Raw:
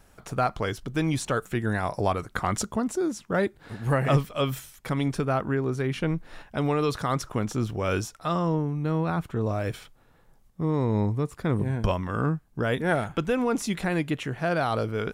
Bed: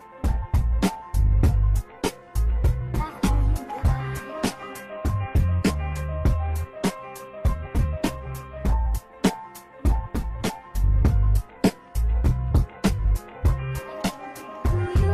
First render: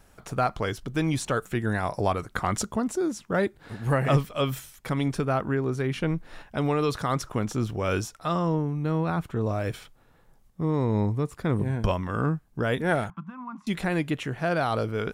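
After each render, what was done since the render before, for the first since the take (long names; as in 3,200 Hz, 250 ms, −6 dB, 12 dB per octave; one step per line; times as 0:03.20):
0:13.10–0:13.67: pair of resonant band-passes 450 Hz, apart 2.5 octaves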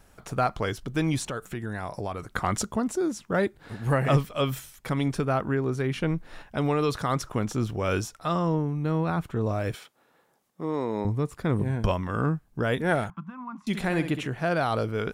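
0:01.27–0:02.27: downward compressor 2.5 to 1, threshold −31 dBFS
0:09.75–0:11.05: high-pass filter 290 Hz
0:13.65–0:14.27: flutter between parallel walls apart 11.2 metres, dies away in 0.41 s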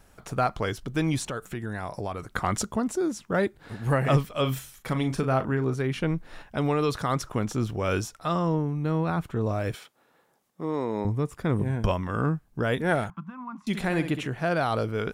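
0:04.41–0:05.74: double-tracking delay 38 ms −9.5 dB
0:10.78–0:12.27: notch filter 4,200 Hz, Q 9.3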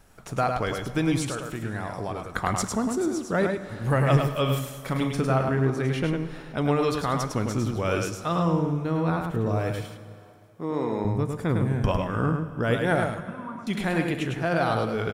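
single-tap delay 104 ms −4.5 dB
dense smooth reverb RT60 2.6 s, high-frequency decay 0.8×, DRR 11.5 dB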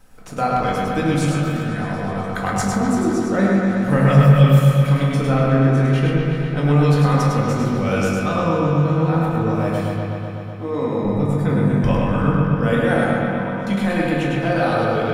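delay with a low-pass on its return 125 ms, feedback 79%, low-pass 3,600 Hz, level −4 dB
rectangular room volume 400 cubic metres, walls furnished, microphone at 2 metres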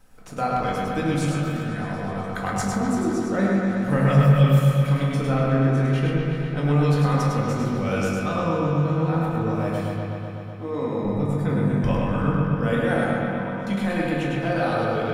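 level −4.5 dB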